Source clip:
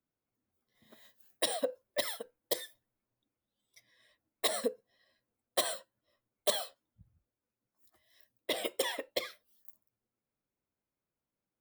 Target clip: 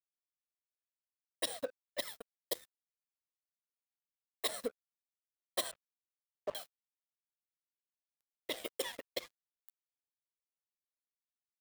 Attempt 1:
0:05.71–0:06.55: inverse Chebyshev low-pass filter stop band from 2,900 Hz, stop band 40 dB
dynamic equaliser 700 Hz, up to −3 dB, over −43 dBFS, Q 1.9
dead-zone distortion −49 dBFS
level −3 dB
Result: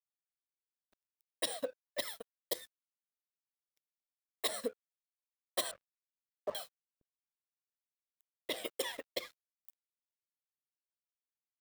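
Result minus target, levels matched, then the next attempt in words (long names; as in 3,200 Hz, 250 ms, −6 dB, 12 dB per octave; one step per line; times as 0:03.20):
dead-zone distortion: distortion −6 dB
0:05.71–0:06.55: inverse Chebyshev low-pass filter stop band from 2,900 Hz, stop band 40 dB
dynamic equaliser 700 Hz, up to −3 dB, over −43 dBFS, Q 1.9
dead-zone distortion −42 dBFS
level −3 dB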